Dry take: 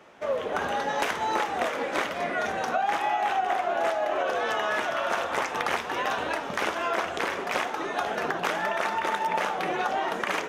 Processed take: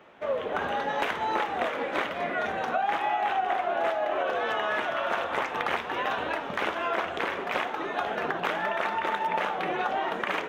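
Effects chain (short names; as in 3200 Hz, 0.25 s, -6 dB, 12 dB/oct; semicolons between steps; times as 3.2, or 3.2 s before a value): band shelf 7700 Hz -10.5 dB; gain -1 dB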